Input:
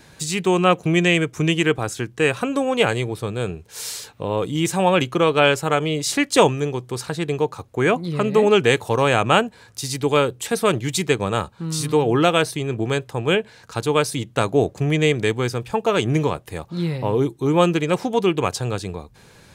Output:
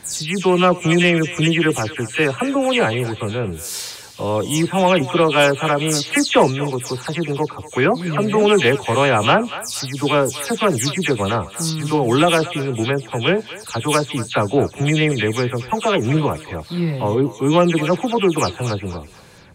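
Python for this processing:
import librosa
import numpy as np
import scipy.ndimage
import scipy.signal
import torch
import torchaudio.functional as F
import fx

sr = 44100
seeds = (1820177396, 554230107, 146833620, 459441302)

y = fx.spec_delay(x, sr, highs='early', ms=160)
y = fx.echo_thinned(y, sr, ms=237, feedback_pct=40, hz=890.0, wet_db=-13.0)
y = fx.cheby_harmonics(y, sr, harmonics=(5,), levels_db=(-26,), full_scale_db=-2.5)
y = y * 10.0 ** (1.5 / 20.0)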